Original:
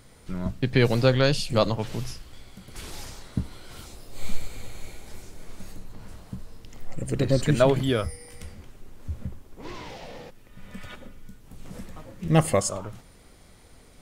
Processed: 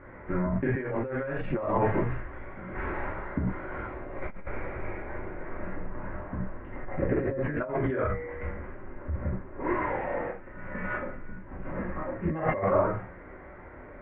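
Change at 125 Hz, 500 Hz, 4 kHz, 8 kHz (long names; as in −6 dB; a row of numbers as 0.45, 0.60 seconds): −6.0 dB, −3.0 dB, below −25 dB, below −40 dB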